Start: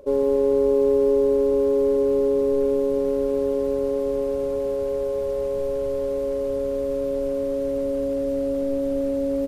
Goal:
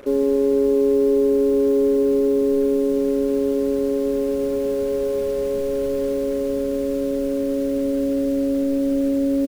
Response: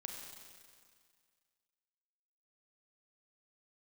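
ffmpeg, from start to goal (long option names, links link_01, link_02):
-filter_complex "[0:a]firequalizer=gain_entry='entry(130,0);entry(230,10);entry(560,0);entry(920,-2);entry(1500,6)':delay=0.05:min_phase=1,asplit=2[link_01][link_02];[link_02]alimiter=limit=-17.5dB:level=0:latency=1:release=398,volume=2dB[link_03];[link_01][link_03]amix=inputs=2:normalize=0,acrusher=bits=5:mix=0:aa=0.5,volume=-6dB"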